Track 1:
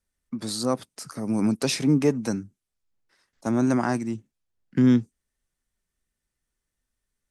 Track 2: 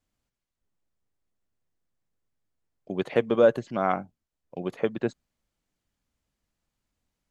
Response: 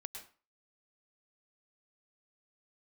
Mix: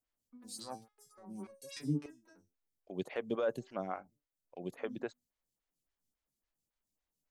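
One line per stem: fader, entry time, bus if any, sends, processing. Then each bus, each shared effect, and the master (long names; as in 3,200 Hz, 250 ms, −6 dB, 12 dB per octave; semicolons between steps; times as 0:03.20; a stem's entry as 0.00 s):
−3.5 dB, 0.00 s, no send, adaptive Wiener filter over 15 samples; step-sequenced resonator 3.4 Hz 85–550 Hz; automatic ducking −24 dB, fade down 1.00 s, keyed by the second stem
−8.5 dB, 0.00 s, no send, brickwall limiter −13.5 dBFS, peak gain reduction 6 dB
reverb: not used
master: high-shelf EQ 4,600 Hz +10.5 dB; phaser with staggered stages 3.6 Hz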